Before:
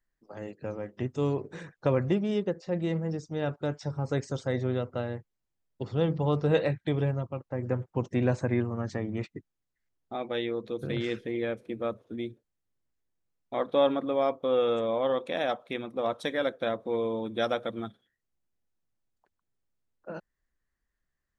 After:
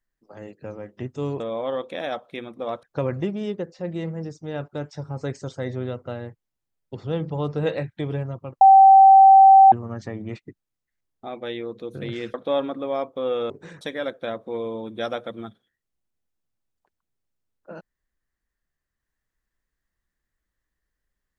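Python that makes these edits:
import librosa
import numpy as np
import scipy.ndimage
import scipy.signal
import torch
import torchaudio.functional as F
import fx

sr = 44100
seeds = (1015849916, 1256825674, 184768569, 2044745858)

y = fx.edit(x, sr, fx.swap(start_s=1.4, length_s=0.31, other_s=14.77, other_length_s=1.43),
    fx.bleep(start_s=7.49, length_s=1.11, hz=775.0, db=-7.0),
    fx.cut(start_s=11.22, length_s=2.39), tone=tone)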